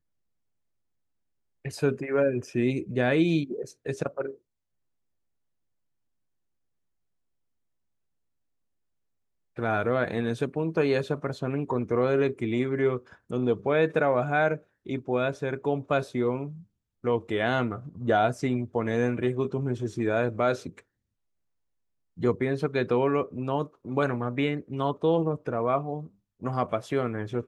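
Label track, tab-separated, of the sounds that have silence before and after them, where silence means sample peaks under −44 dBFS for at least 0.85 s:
1.650000	4.350000	sound
9.570000	20.800000	sound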